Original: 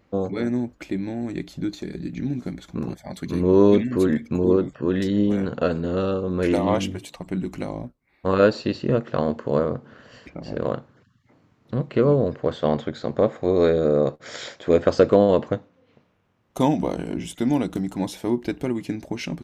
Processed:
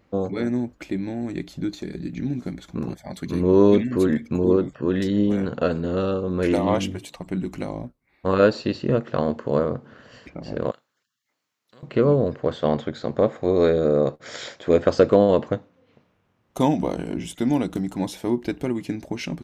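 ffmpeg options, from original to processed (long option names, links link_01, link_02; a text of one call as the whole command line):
ffmpeg -i in.wav -filter_complex "[0:a]asettb=1/sr,asplit=3[link_01][link_02][link_03];[link_01]atrim=end=10.714[link_04];[link_02]atrim=start=10.71:end=11.83,asetpts=PTS-STARTPTS,afade=type=in:duration=0.004:curve=qsin,afade=type=out:start_time=1.116:duration=0.004:curve=qsin,aderivative[link_05];[link_03]atrim=start=11.826[link_06];[link_04][link_05]acrossfade=duration=0.004:curve1=hsin:curve2=qsin[link_07];[link_07][link_06]acrossfade=duration=0.004:curve1=qsin:curve2=hsin" out.wav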